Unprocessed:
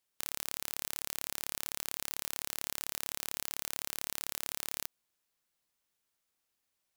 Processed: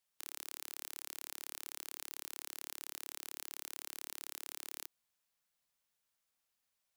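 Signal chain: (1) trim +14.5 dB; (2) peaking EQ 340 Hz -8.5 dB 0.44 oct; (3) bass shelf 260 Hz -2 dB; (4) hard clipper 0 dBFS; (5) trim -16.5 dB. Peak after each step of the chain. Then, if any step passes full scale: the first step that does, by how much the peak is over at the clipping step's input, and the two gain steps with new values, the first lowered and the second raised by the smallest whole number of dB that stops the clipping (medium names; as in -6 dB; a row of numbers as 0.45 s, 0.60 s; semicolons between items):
+5.5 dBFS, +5.5 dBFS, +5.5 dBFS, 0.0 dBFS, -16.5 dBFS; step 1, 5.5 dB; step 1 +8.5 dB, step 5 -10.5 dB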